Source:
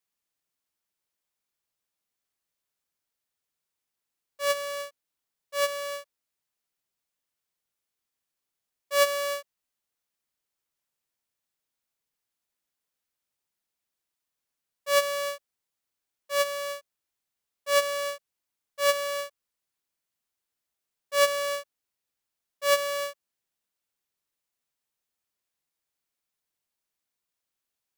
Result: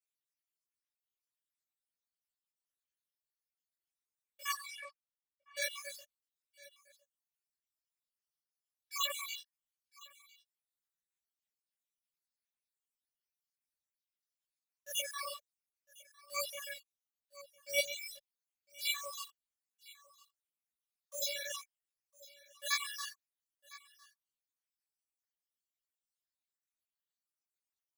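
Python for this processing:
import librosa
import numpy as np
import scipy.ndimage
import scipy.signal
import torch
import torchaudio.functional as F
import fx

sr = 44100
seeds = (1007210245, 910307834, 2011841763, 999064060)

p1 = fx.spec_dropout(x, sr, seeds[0], share_pct=72)
p2 = fx.quant_dither(p1, sr, seeds[1], bits=8, dither='none')
p3 = p1 + (p2 * librosa.db_to_amplitude(-4.0))
p4 = p3 + 10.0 ** (-21.0 / 20.0) * np.pad(p3, (int(1006 * sr / 1000.0), 0))[:len(p3)]
p5 = fx.chorus_voices(p4, sr, voices=6, hz=1.2, base_ms=19, depth_ms=3.0, mix_pct=55)
p6 = fx.tone_stack(p5, sr, knobs='5-5-5')
p7 = fx.env_lowpass(p6, sr, base_hz=1100.0, full_db=-42.5, at=(4.5, 5.56), fade=0.02)
y = p7 * librosa.db_to_amplitude(4.5)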